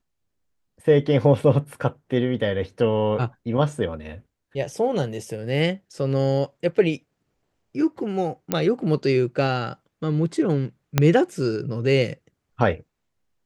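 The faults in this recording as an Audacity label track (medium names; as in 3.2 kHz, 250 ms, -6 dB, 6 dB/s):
8.520000	8.520000	pop -7 dBFS
10.980000	10.980000	pop -3 dBFS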